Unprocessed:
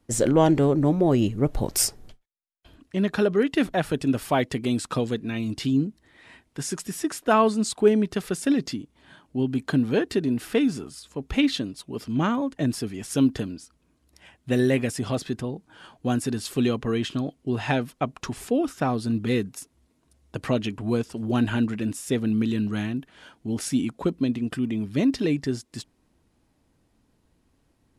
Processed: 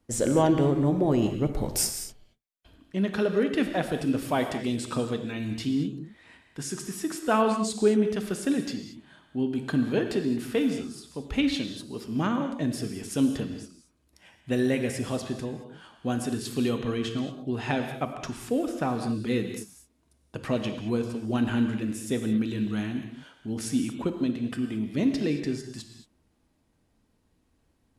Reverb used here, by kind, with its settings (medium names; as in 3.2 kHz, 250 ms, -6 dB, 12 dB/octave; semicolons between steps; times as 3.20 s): gated-style reverb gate 250 ms flat, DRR 5.5 dB; trim -4 dB